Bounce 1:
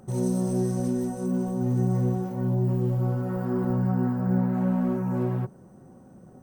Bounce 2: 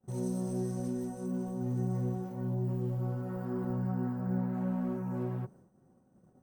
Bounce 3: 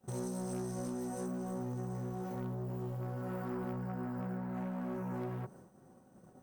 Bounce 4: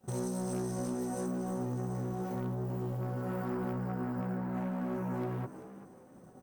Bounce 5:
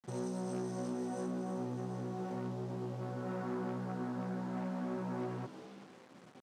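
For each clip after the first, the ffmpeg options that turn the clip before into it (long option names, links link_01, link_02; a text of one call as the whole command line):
ffmpeg -i in.wav -af "agate=range=-33dB:threshold=-43dB:ratio=3:detection=peak,volume=-8.5dB" out.wav
ffmpeg -i in.wav -af "acompressor=threshold=-38dB:ratio=4,aeval=exprs='0.0266*(cos(1*acos(clip(val(0)/0.0266,-1,1)))-cos(1*PI/2))+0.00237*(cos(5*acos(clip(val(0)/0.0266,-1,1)))-cos(5*PI/2))':channel_layout=same,lowshelf=frequency=410:gain=-8.5,volume=7dB" out.wav
ffmpeg -i in.wav -filter_complex "[0:a]asplit=4[link_01][link_02][link_03][link_04];[link_02]adelay=387,afreqshift=71,volume=-14.5dB[link_05];[link_03]adelay=774,afreqshift=142,volume=-25dB[link_06];[link_04]adelay=1161,afreqshift=213,volume=-35.4dB[link_07];[link_01][link_05][link_06][link_07]amix=inputs=4:normalize=0,volume=3.5dB" out.wav
ffmpeg -i in.wav -af "acrusher=bits=8:mix=0:aa=0.000001,highpass=140,lowpass=5800,volume=-2.5dB" out.wav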